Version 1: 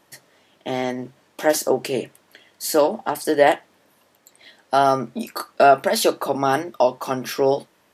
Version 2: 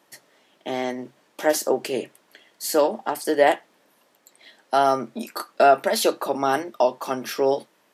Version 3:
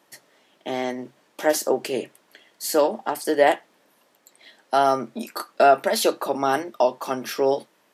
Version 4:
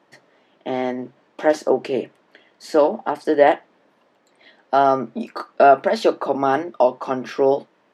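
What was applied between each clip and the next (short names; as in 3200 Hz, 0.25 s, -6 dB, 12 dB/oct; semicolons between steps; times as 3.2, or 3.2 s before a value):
HPF 190 Hz 12 dB/oct; gain -2 dB
nothing audible
tape spacing loss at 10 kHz 24 dB; gain +5 dB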